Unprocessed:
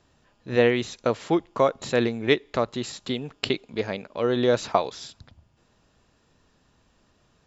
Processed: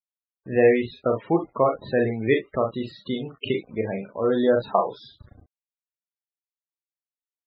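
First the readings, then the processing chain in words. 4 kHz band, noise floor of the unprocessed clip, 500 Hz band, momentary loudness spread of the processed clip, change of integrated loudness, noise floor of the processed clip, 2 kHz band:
-7.0 dB, -65 dBFS, +2.0 dB, 11 LU, +1.0 dB, under -85 dBFS, -1.0 dB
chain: LPF 3700 Hz 12 dB/oct; low shelf 87 Hz +2.5 dB; requantised 8-bit, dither none; early reflections 36 ms -5 dB, 46 ms -12.5 dB, 61 ms -12.5 dB; loudest bins only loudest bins 32

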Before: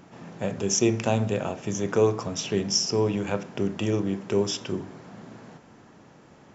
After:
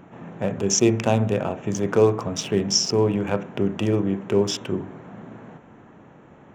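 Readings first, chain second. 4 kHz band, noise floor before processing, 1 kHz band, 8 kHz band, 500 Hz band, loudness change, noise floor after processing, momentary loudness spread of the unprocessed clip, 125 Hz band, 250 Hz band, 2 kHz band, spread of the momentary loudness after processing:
+3.0 dB, -53 dBFS, +3.5 dB, n/a, +4.0 dB, +3.5 dB, -49 dBFS, 18 LU, +4.0 dB, +4.0 dB, +2.5 dB, 18 LU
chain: Wiener smoothing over 9 samples; gain +4 dB

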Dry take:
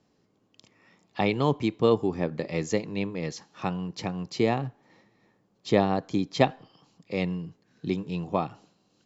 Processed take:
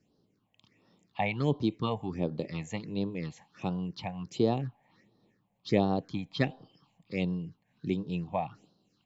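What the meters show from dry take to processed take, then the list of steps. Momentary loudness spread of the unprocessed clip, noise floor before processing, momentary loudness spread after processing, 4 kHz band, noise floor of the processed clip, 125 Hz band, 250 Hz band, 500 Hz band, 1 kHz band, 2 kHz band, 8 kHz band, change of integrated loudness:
12 LU, -69 dBFS, 11 LU, -5.0 dB, -75 dBFS, -2.0 dB, -3.5 dB, -6.5 dB, -6.0 dB, -4.5 dB, n/a, -4.5 dB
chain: phaser stages 6, 1.4 Hz, lowest notch 340–2200 Hz; gain -2.5 dB

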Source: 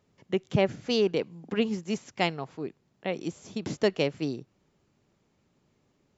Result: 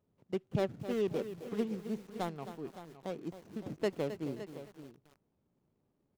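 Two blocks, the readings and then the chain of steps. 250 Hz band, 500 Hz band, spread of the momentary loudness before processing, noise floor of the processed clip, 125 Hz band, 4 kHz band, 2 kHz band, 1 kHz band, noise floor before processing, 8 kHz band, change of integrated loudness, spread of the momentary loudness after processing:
-7.0 dB, -7.5 dB, 11 LU, -79 dBFS, -7.0 dB, -16.0 dB, -13.5 dB, -8.0 dB, -71 dBFS, n/a, -8.5 dB, 12 LU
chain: median filter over 25 samples; echo 0.564 s -13 dB; lo-fi delay 0.265 s, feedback 35%, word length 7-bit, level -11 dB; gain -7.5 dB

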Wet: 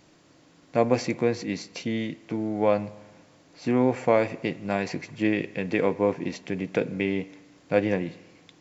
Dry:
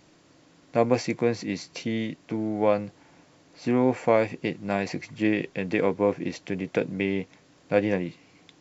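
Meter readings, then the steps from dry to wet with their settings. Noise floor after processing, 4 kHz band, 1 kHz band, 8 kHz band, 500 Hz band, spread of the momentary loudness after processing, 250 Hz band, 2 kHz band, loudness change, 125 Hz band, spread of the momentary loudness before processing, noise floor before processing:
-58 dBFS, 0.0 dB, 0.0 dB, n/a, 0.0 dB, 9 LU, 0.0 dB, 0.0 dB, 0.0 dB, 0.0 dB, 9 LU, -58 dBFS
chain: spring tank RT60 1.1 s, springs 48 ms, chirp 55 ms, DRR 17.5 dB

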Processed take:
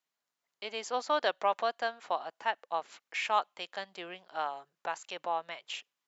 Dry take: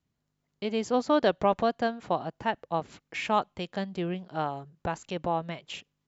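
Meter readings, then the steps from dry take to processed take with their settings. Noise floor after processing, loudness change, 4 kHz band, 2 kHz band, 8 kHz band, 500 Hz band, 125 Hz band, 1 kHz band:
under -85 dBFS, -4.5 dB, 0.0 dB, 0.0 dB, n/a, -7.0 dB, under -25 dB, -2.5 dB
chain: HPF 800 Hz 12 dB/oct

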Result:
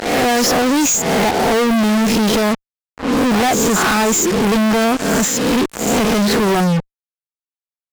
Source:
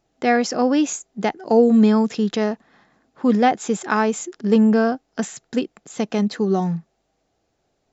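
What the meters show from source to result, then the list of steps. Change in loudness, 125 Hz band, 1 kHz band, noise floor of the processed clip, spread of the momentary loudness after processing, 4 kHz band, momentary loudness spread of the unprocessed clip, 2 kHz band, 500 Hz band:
+5.0 dB, +6.0 dB, +6.0 dB, under -85 dBFS, 4 LU, +14.0 dB, 12 LU, +9.0 dB, +4.0 dB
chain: spectral swells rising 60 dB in 0.58 s; fuzz box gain 42 dB, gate -37 dBFS

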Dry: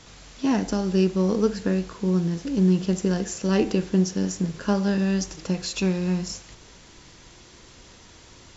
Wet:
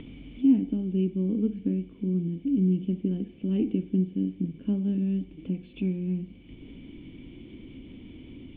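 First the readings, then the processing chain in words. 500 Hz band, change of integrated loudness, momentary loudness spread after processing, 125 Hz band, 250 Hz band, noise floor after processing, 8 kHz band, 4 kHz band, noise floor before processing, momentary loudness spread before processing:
-10.5 dB, -3.5 dB, 21 LU, -4.0 dB, -2.5 dB, -49 dBFS, n/a, under -15 dB, -50 dBFS, 6 LU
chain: vocal tract filter i; high shelf 2600 Hz -8.5 dB; upward compressor, threshold -36 dBFS; gain +4 dB

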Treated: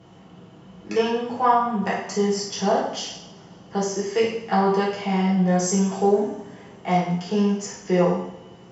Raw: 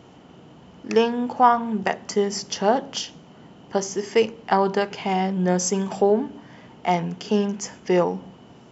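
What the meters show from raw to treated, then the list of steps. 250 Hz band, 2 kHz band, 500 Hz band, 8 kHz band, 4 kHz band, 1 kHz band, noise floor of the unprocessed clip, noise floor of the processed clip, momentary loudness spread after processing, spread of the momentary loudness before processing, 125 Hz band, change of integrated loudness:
+2.0 dB, -1.0 dB, -0.5 dB, n/a, -1.0 dB, -1.0 dB, -48 dBFS, -47 dBFS, 11 LU, 10 LU, +4.0 dB, 0.0 dB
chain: two-slope reverb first 0.64 s, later 2.8 s, from -25 dB, DRR -7 dB; added harmonics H 5 -41 dB, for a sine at 2 dBFS; gain -8.5 dB

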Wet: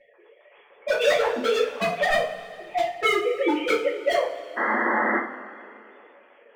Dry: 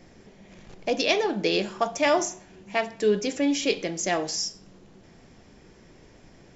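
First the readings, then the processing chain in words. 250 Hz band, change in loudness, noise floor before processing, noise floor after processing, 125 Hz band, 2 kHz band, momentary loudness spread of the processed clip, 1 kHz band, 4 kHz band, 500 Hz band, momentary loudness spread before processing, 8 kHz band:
-2.5 dB, +2.0 dB, -53 dBFS, -56 dBFS, -6.0 dB, +6.5 dB, 13 LU, +5.0 dB, -1.5 dB, +3.0 dB, 8 LU, n/a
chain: sine-wave speech; treble ducked by the level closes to 1600 Hz, closed at -19.5 dBFS; vocal rider within 3 dB 2 s; wavefolder -22.5 dBFS; painted sound noise, 4.56–5.19, 200–2100 Hz -31 dBFS; two-slope reverb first 0.35 s, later 2.6 s, from -19 dB, DRR -7.5 dB

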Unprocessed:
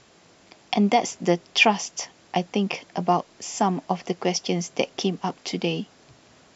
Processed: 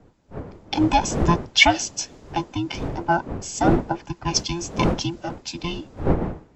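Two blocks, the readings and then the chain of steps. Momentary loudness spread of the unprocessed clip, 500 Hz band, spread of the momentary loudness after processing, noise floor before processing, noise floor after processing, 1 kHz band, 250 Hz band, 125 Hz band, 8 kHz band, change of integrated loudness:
11 LU, -1.0 dB, 15 LU, -56 dBFS, -53 dBFS, +1.5 dB, +2.0 dB, +5.5 dB, n/a, +2.0 dB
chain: band inversion scrambler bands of 500 Hz; wind noise 400 Hz -28 dBFS; high shelf 6100 Hz +5.5 dB; three-band expander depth 70%; gain -1 dB

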